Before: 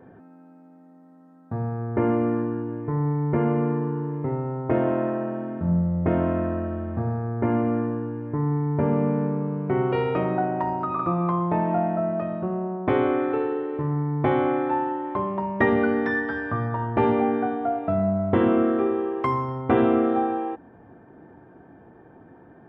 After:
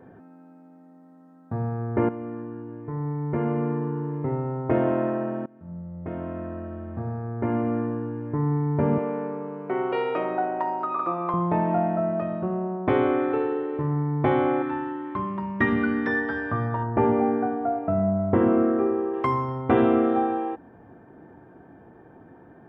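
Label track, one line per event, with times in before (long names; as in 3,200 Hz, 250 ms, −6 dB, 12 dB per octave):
2.090000	4.350000	fade in, from −13 dB
5.460000	8.300000	fade in, from −23 dB
8.980000	11.340000	high-pass filter 370 Hz
14.620000	16.070000	flat-topped bell 600 Hz −11 dB 1.3 octaves
16.830000	19.140000	Gaussian smoothing sigma 3.7 samples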